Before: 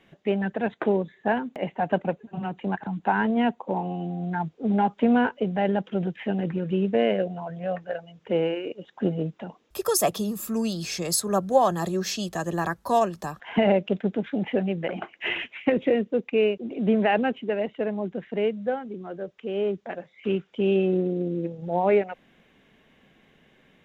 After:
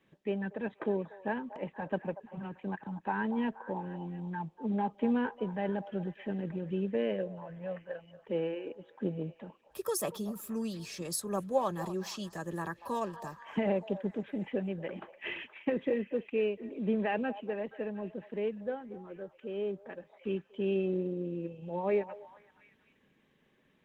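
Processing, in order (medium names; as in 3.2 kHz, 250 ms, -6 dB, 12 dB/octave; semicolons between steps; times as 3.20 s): comb of notches 710 Hz; repeats whose band climbs or falls 237 ms, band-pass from 790 Hz, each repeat 0.7 oct, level -11 dB; trim -8.5 dB; Opus 24 kbps 48 kHz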